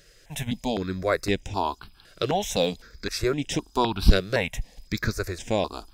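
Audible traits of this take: notches that jump at a steady rate 3.9 Hz 240–4400 Hz

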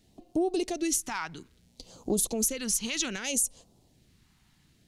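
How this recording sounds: phasing stages 2, 0.62 Hz, lowest notch 520–1800 Hz

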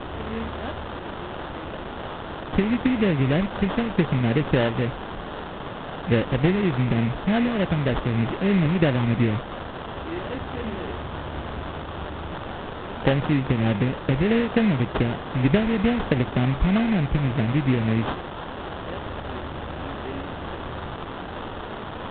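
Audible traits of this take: a quantiser's noise floor 6-bit, dither triangular; phasing stages 4, 3.3 Hz, lowest notch 670–2100 Hz; aliases and images of a low sample rate 2300 Hz, jitter 20%; µ-law

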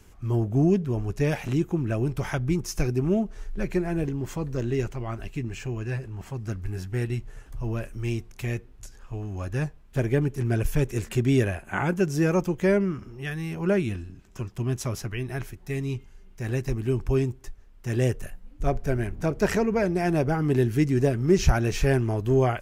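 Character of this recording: noise floor -50 dBFS; spectral tilt -6.5 dB/oct

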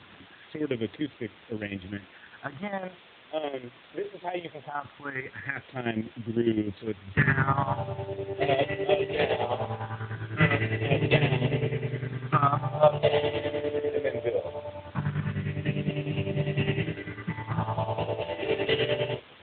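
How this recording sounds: phasing stages 4, 0.2 Hz, lowest notch 180–1300 Hz; chopped level 9.9 Hz, depth 65%, duty 50%; a quantiser's noise floor 8-bit, dither triangular; AMR-NB

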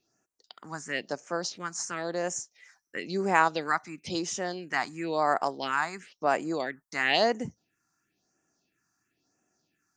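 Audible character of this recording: phasing stages 4, 0.98 Hz, lowest notch 480–4000 Hz

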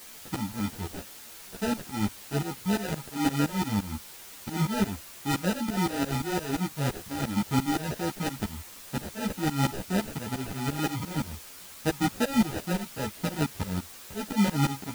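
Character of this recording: aliases and images of a low sample rate 1100 Hz, jitter 0%; tremolo saw up 5.8 Hz, depth 100%; a quantiser's noise floor 8-bit, dither triangular; a shimmering, thickened sound

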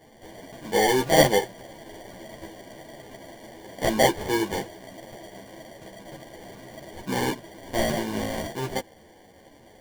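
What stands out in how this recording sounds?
aliases and images of a low sample rate 1300 Hz, jitter 0%; a shimmering, thickened sound

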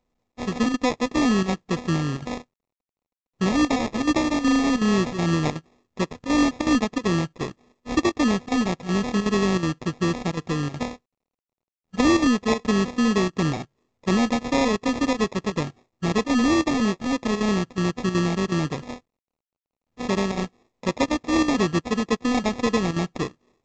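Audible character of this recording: a buzz of ramps at a fixed pitch in blocks of 16 samples; chopped level 2.7 Hz, depth 65%, duty 85%; aliases and images of a low sample rate 1500 Hz, jitter 0%; µ-law

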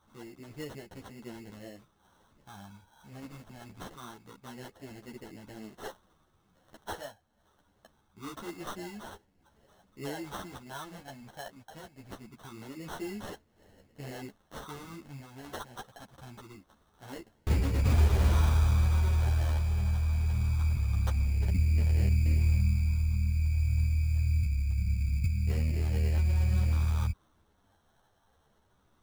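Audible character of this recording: phasing stages 8, 0.24 Hz, lowest notch 360–1100 Hz; aliases and images of a low sample rate 2400 Hz, jitter 0%; a shimmering, thickened sound

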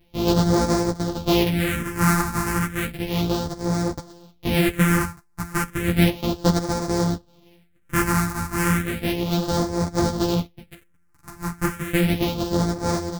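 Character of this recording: a buzz of ramps at a fixed pitch in blocks of 256 samples; phasing stages 4, 0.33 Hz, lowest notch 520–2800 Hz; tremolo saw down 0.51 Hz, depth 35%; a shimmering, thickened sound

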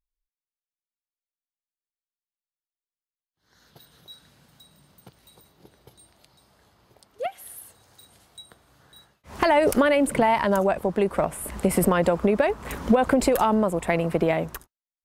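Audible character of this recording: noise floor -97 dBFS; spectral tilt -5.0 dB/oct

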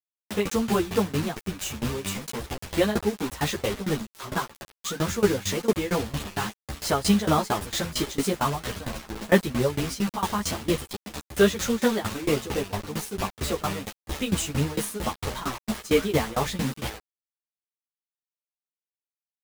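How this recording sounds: a quantiser's noise floor 6-bit, dither none; tremolo saw down 4.4 Hz, depth 95%; a shimmering, thickened sound

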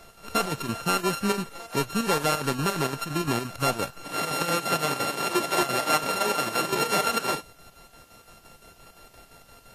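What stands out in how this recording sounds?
a buzz of ramps at a fixed pitch in blocks of 32 samples; chopped level 5.8 Hz, depth 60%, duty 65%; a quantiser's noise floor 10-bit, dither triangular; Vorbis

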